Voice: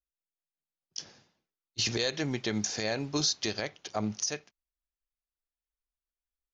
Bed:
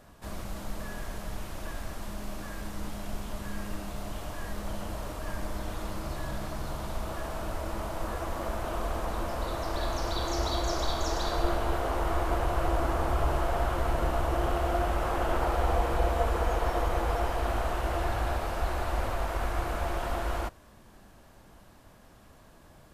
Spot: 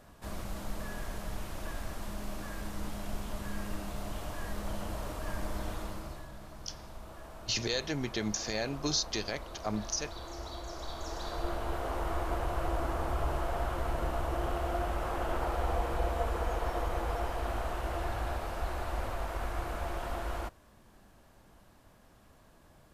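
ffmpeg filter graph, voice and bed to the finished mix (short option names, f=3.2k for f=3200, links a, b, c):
-filter_complex "[0:a]adelay=5700,volume=-2.5dB[a];[1:a]volume=6dB,afade=t=out:st=5.67:d=0.61:silence=0.281838,afade=t=in:st=10.71:d=1.21:silence=0.421697[b];[a][b]amix=inputs=2:normalize=0"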